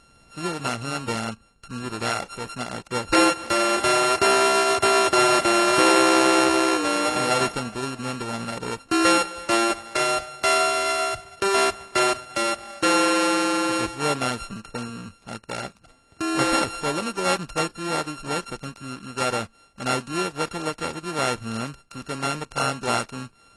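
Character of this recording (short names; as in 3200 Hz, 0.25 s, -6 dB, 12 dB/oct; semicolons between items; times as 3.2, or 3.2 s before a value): a buzz of ramps at a fixed pitch in blocks of 32 samples; AAC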